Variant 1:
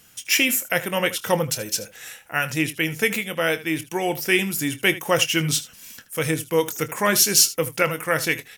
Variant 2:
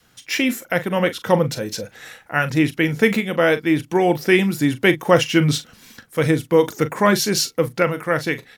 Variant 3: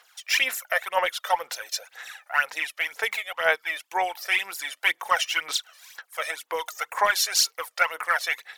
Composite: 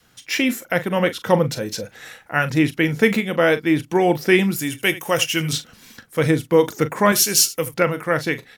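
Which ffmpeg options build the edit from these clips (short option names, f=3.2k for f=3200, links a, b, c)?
-filter_complex "[0:a]asplit=2[a][b];[1:a]asplit=3[c][d][e];[c]atrim=end=4.562[f];[a]atrim=start=4.558:end=5.532[g];[d]atrim=start=5.528:end=7.122[h];[b]atrim=start=7.118:end=7.742[i];[e]atrim=start=7.738[j];[f][g]acrossfade=d=0.004:c1=hsin:c2=hsin[k];[k][h]acrossfade=d=0.004:c1=hsin:c2=hsin[l];[l][i]acrossfade=d=0.004:c1=hsin:c2=hsin[m];[m][j]acrossfade=d=0.004:c1=hsin:c2=hsin"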